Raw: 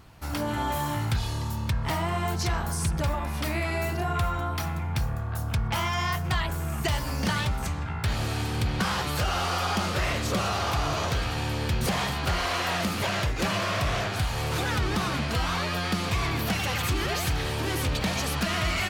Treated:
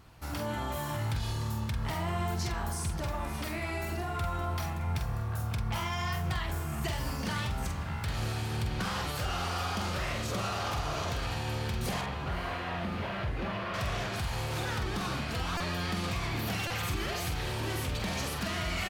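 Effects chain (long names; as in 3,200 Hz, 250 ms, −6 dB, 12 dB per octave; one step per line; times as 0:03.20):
brickwall limiter −22 dBFS, peak gain reduction 4 dB
0:12.01–0:13.74: high-frequency loss of the air 320 metres
double-tracking delay 46 ms −6 dB
feedback delay with all-pass diffusion 579 ms, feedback 64%, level −16 dB
buffer that repeats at 0:15.57/0:16.67, samples 128, times 10
level −4.5 dB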